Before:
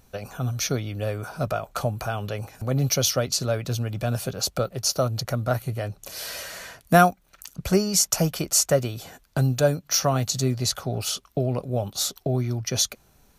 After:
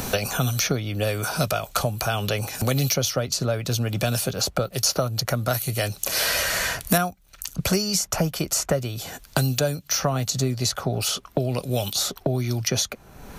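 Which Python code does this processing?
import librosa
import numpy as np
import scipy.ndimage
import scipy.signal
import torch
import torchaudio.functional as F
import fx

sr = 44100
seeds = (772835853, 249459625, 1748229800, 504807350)

y = fx.high_shelf(x, sr, hz=2400.0, db=11.5, at=(4.73, 6.98))
y = fx.band_squash(y, sr, depth_pct=100)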